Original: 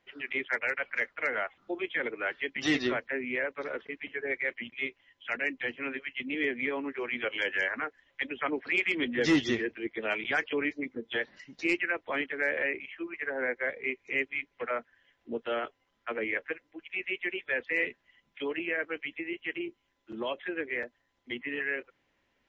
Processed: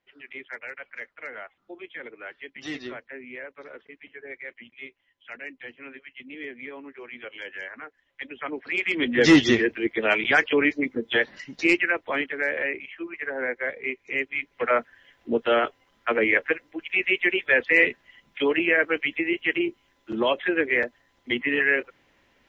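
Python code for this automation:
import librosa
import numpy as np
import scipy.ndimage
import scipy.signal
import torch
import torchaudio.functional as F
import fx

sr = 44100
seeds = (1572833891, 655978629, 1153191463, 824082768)

y = fx.gain(x, sr, db=fx.line((7.74, -7.0), (8.76, 1.0), (9.23, 9.5), (11.49, 9.5), (12.5, 3.0), (14.24, 3.0), (14.75, 11.0)))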